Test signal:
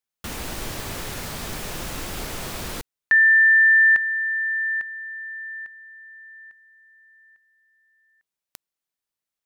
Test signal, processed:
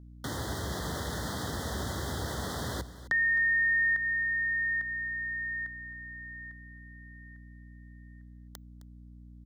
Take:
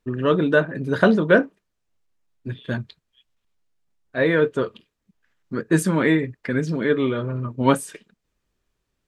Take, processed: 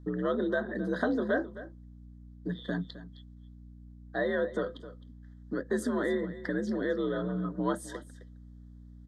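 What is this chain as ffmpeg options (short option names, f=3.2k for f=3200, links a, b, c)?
-filter_complex "[0:a]highshelf=f=8.1k:g=-10,acompressor=threshold=-31dB:ratio=2.5:attack=6.5:release=142:detection=rms,afreqshift=55,aeval=exprs='val(0)+0.00398*(sin(2*PI*60*n/s)+sin(2*PI*2*60*n/s)/2+sin(2*PI*3*60*n/s)/3+sin(2*PI*4*60*n/s)/4+sin(2*PI*5*60*n/s)/5)':c=same,asuperstop=centerf=2500:order=12:qfactor=2.2,asplit=2[a][b];[b]aecho=0:1:262:0.168[c];[a][c]amix=inputs=2:normalize=0"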